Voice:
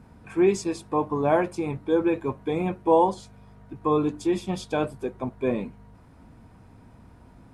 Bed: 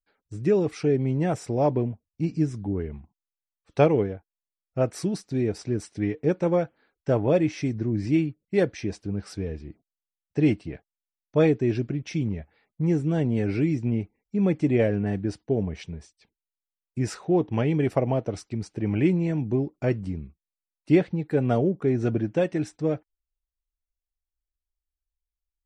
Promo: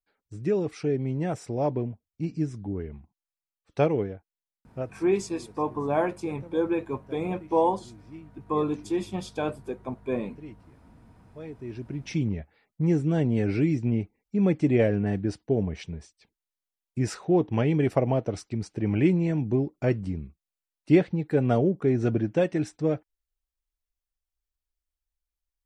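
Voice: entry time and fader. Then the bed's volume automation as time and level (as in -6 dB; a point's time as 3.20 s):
4.65 s, -3.5 dB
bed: 4.71 s -4 dB
5.10 s -22.5 dB
11.40 s -22.5 dB
12.11 s 0 dB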